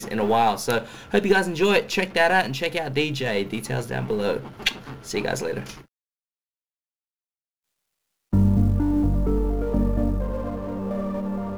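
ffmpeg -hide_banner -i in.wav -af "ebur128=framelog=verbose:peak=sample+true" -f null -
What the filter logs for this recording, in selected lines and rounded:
Integrated loudness:
  I:         -23.6 LUFS
  Threshold: -33.8 LUFS
Loudness range:
  LRA:         9.5 LU
  Threshold: -45.2 LUFS
  LRA low:   -31.5 LUFS
  LRA high:  -22.0 LUFS
Sample peak:
  Peak:       -4.8 dBFS
True peak:
  Peak:       -4.7 dBFS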